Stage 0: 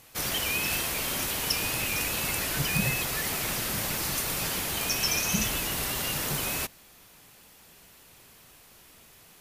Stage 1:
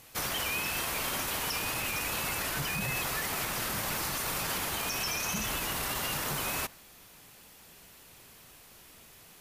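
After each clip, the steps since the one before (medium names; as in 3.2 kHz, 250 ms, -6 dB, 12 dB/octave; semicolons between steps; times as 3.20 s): dynamic bell 1.1 kHz, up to +6 dB, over -47 dBFS, Q 0.9; peak limiter -23.5 dBFS, peak gain reduction 11 dB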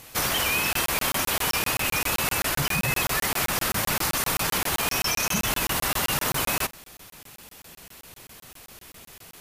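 crackling interface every 0.13 s, samples 1024, zero, from 0.73 s; trim +8 dB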